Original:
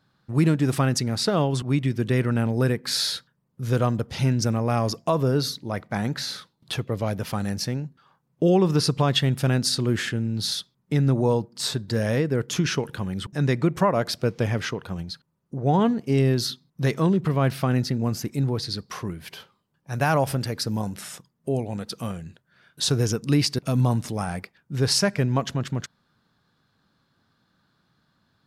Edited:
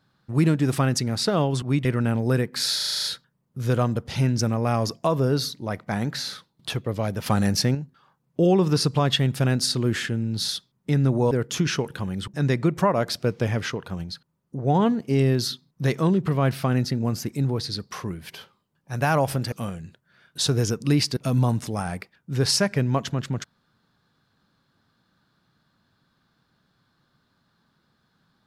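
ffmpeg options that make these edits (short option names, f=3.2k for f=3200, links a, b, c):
-filter_complex "[0:a]asplit=13[a][b][c][d][e][f][g][h][i][j][k][l][m];[a]atrim=end=1.852[n];[b]atrim=start=2.158:end=3.112[o];[c]atrim=start=3.068:end=3.112[p];[d]atrim=start=3.068:end=3.112[q];[e]atrim=start=3.068:end=3.112[r];[f]atrim=start=3.068:end=3.112[s];[g]atrim=start=3.068:end=3.112[t];[h]atrim=start=3.068:end=3.112[u];[i]atrim=start=3.068:end=7.292[v];[j]atrim=start=7.288:end=7.782,asetpts=PTS-STARTPTS,volume=6dB[w];[k]atrim=start=7.778:end=11.342[x];[l]atrim=start=12.298:end=20.512[y];[m]atrim=start=21.938[z];[n][o]acrossfade=d=0.004:c1=hsin:c2=hsin[aa];[aa][p]acrossfade=d=0.004:c1=hsin:c2=hsin[ab];[ab][q]acrossfade=d=0.004:c1=hsin:c2=hsin[ac];[ac][r]acrossfade=d=0.004:c1=hsin:c2=hsin[ad];[ad][s]acrossfade=d=0.004:c1=hsin:c2=hsin[ae];[ae][t]acrossfade=d=0.004:c1=hsin:c2=hsin[af];[af][u]acrossfade=d=0.004:c1=hsin:c2=hsin[ag];[ag][v]acrossfade=d=0.004:c1=hsin:c2=hsin[ah];[ah][w]acrossfade=d=0.004:c1=hsin:c2=hsin[ai];[ai][x]acrossfade=d=0.004:c1=hsin:c2=hsin[aj];[aj][y]acrossfade=d=0.004:c1=hsin:c2=hsin[ak];[ak][z]acrossfade=d=0.004:c1=hsin:c2=hsin"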